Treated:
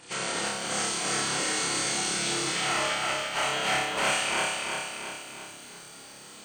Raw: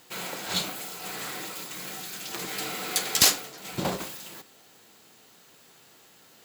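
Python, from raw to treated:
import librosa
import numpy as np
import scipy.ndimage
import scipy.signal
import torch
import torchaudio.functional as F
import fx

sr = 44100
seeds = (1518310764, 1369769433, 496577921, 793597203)

p1 = fx.freq_compress(x, sr, knee_hz=1700.0, ratio=1.5)
p2 = fx.over_compress(p1, sr, threshold_db=-37.0, ratio=-0.5)
p3 = fx.ring_mod(p2, sr, carrier_hz=110.0, at=(2.76, 3.43))
p4 = fx.spec_box(p3, sr, start_s=2.56, length_s=2.06, low_hz=550.0, high_hz=3300.0, gain_db=10)
p5 = np.clip(p4, -10.0 ** (-23.5 / 20.0), 10.0 ** (-23.5 / 20.0))
p6 = p5 + fx.room_flutter(p5, sr, wall_m=5.0, rt60_s=0.77, dry=0)
y = fx.echo_crushed(p6, sr, ms=340, feedback_pct=55, bits=9, wet_db=-4.0)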